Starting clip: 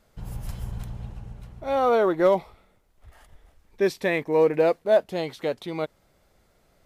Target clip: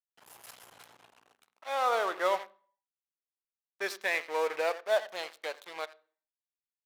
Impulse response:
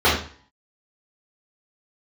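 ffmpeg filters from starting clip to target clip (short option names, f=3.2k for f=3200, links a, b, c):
-filter_complex "[0:a]asplit=2[a][b];[b]aecho=0:1:86|172:0.2|0.0379[c];[a][c]amix=inputs=2:normalize=0,aeval=exprs='sgn(val(0))*max(abs(val(0))-0.0158,0)':c=same,highpass=970,asplit=2[d][e];[1:a]atrim=start_sample=2205,lowshelf=f=280:g=9.5[f];[e][f]afir=irnorm=-1:irlink=0,volume=-40dB[g];[d][g]amix=inputs=2:normalize=0"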